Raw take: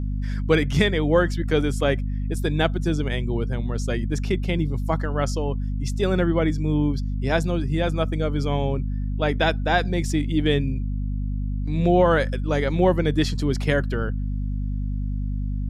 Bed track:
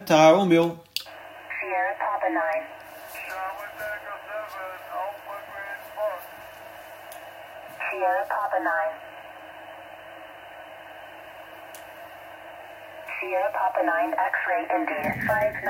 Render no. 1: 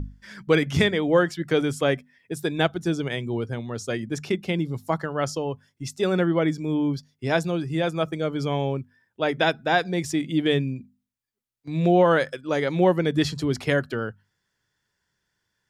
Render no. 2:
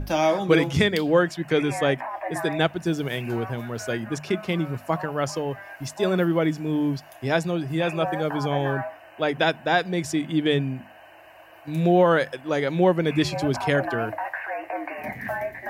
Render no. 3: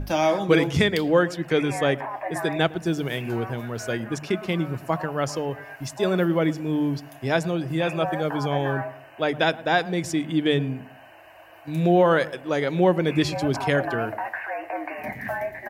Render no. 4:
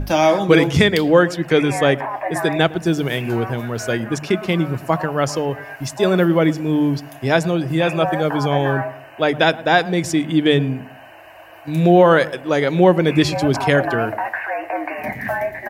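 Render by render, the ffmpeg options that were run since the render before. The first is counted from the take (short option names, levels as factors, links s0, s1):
-af "bandreject=f=50:t=h:w=6,bandreject=f=100:t=h:w=6,bandreject=f=150:t=h:w=6,bandreject=f=200:t=h:w=6,bandreject=f=250:t=h:w=6"
-filter_complex "[1:a]volume=0.501[s0];[0:a][s0]amix=inputs=2:normalize=0"
-filter_complex "[0:a]asplit=2[s0][s1];[s1]adelay=110,lowpass=f=1000:p=1,volume=0.15,asplit=2[s2][s3];[s3]adelay=110,lowpass=f=1000:p=1,volume=0.4,asplit=2[s4][s5];[s5]adelay=110,lowpass=f=1000:p=1,volume=0.4[s6];[s0][s2][s4][s6]amix=inputs=4:normalize=0"
-af "volume=2.11,alimiter=limit=0.891:level=0:latency=1"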